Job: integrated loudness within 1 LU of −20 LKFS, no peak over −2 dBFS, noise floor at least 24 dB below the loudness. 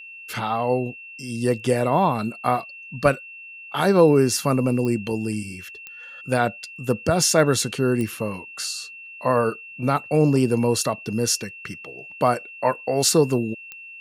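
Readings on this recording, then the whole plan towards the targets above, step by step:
number of clicks 4; interfering tone 2,700 Hz; level of the tone −38 dBFS; integrated loudness −22.0 LKFS; sample peak −3.0 dBFS; target loudness −20.0 LKFS
→ click removal
notch filter 2,700 Hz, Q 30
level +2 dB
brickwall limiter −2 dBFS

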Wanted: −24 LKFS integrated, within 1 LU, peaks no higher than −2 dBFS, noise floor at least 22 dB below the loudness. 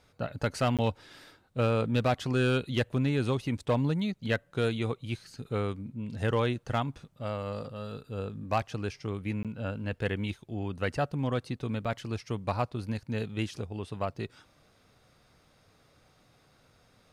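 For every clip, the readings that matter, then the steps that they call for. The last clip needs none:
share of clipped samples 0.3%; peaks flattened at −19.0 dBFS; number of dropouts 2; longest dropout 17 ms; integrated loudness −32.0 LKFS; sample peak −19.0 dBFS; target loudness −24.0 LKFS
→ clipped peaks rebuilt −19 dBFS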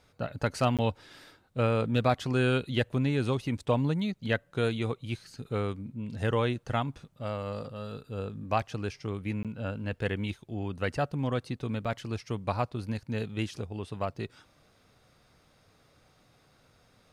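share of clipped samples 0.0%; number of dropouts 2; longest dropout 17 ms
→ repair the gap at 0:00.77/0:09.43, 17 ms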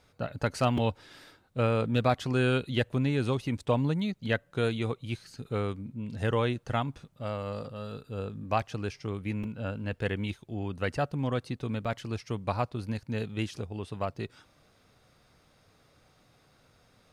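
number of dropouts 0; integrated loudness −31.5 LKFS; sample peak −12.0 dBFS; target loudness −24.0 LKFS
→ level +7.5 dB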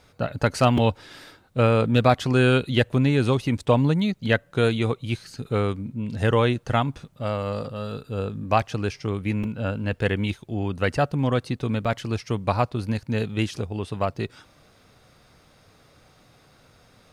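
integrated loudness −24.0 LKFS; sample peak −4.5 dBFS; background noise floor −57 dBFS

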